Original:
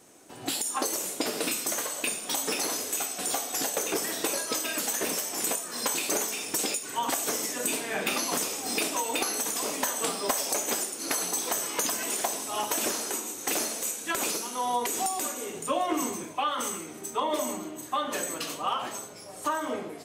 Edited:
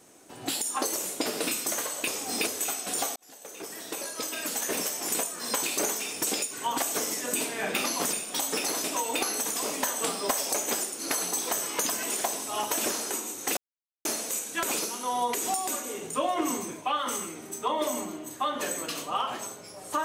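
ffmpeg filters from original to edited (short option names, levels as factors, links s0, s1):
-filter_complex "[0:a]asplit=7[s0][s1][s2][s3][s4][s5][s6];[s0]atrim=end=2.082[s7];[s1]atrim=start=8.448:end=8.842[s8];[s2]atrim=start=2.788:end=3.48,asetpts=PTS-STARTPTS,afade=t=out:st=0.688:d=0.004:c=hsin[s9];[s3]atrim=start=3.48:end=8.452,asetpts=PTS-STARTPTS,afade=t=in:d=1.66[s10];[s4]atrim=start=2.078:end=2.792[s11];[s5]atrim=start=8.838:end=13.57,asetpts=PTS-STARTPTS,afade=t=out:st=4.728:d=0.004:c=hsin,apad=pad_dur=0.48[s12];[s6]atrim=start=13.57,asetpts=PTS-STARTPTS,afade=t=in:d=0.004:c=hsin[s13];[s7][s8]acrossfade=d=0.004:c1=hsin:c2=hsin[s14];[s9][s10]concat=n=2:v=0:a=1[s15];[s14][s15]acrossfade=d=0.004:c1=hsin:c2=hsin[s16];[s16][s11]acrossfade=d=0.004:c1=hsin:c2=hsin[s17];[s12][s13]concat=n=2:v=0:a=1[s18];[s17][s18]acrossfade=d=0.004:c1=hsin:c2=hsin"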